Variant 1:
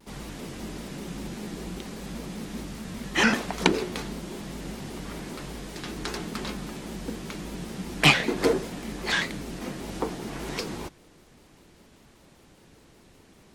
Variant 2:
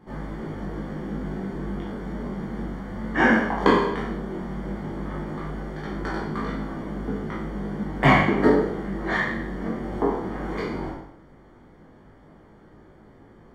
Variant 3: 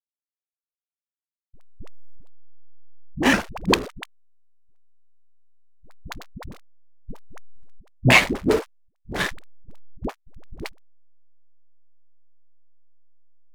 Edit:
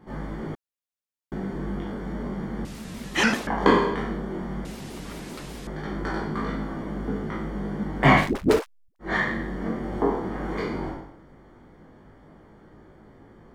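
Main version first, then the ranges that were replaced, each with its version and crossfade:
2
0.55–1.32 from 3
2.65–3.47 from 1
4.65–5.67 from 1
8.24–9.07 from 3, crossfade 0.16 s

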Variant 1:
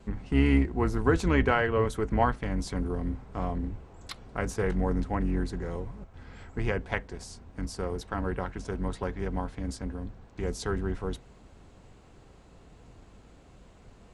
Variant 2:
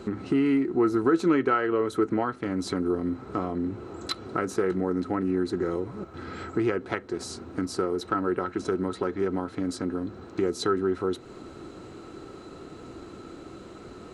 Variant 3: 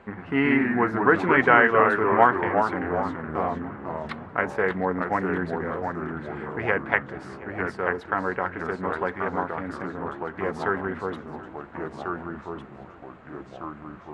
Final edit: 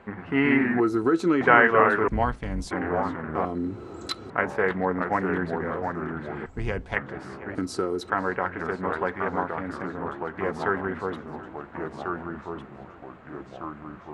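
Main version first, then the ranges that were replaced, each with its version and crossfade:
3
0.8–1.41 from 2
2.08–2.71 from 1
3.45–4.3 from 2
6.46–6.96 from 1
7.55–8.1 from 2

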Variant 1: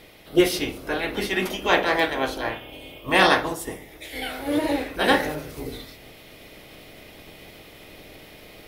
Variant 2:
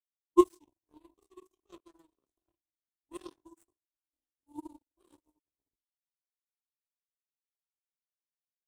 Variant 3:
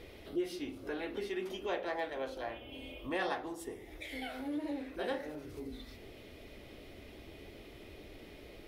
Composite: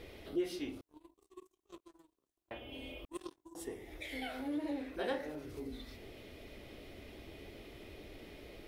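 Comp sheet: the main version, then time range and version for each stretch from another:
3
0.81–2.51 from 2
3.05–3.55 from 2
not used: 1

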